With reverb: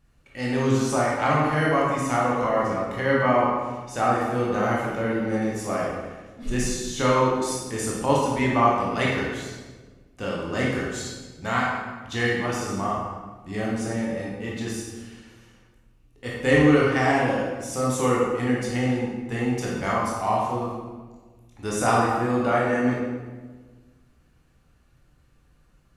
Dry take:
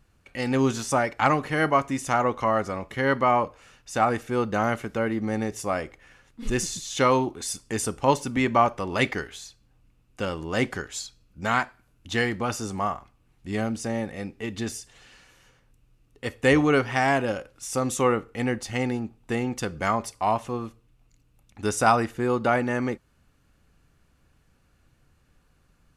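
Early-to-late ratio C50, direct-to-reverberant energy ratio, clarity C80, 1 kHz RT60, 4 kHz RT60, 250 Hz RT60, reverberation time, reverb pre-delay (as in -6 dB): -0.5 dB, -5.0 dB, 2.5 dB, 1.3 s, 1.0 s, 1.8 s, 1.4 s, 15 ms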